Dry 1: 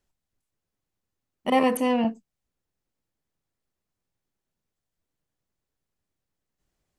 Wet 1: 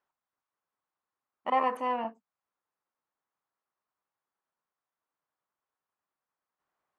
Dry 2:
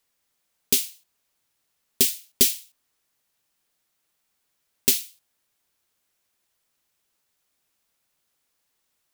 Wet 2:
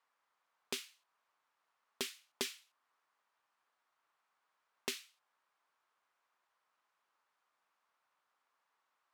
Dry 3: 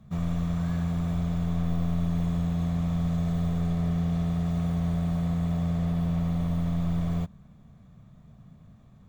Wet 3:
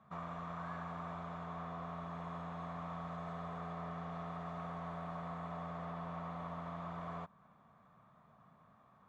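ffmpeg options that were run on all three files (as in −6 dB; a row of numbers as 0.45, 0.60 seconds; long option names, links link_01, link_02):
-filter_complex "[0:a]asplit=2[link_01][link_02];[link_02]acompressor=threshold=-35dB:ratio=6,volume=-1dB[link_03];[link_01][link_03]amix=inputs=2:normalize=0,bandpass=frequency=1100:width_type=q:width=2.2:csg=0,volume=1dB"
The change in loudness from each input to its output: −7.0, −21.5, −16.5 LU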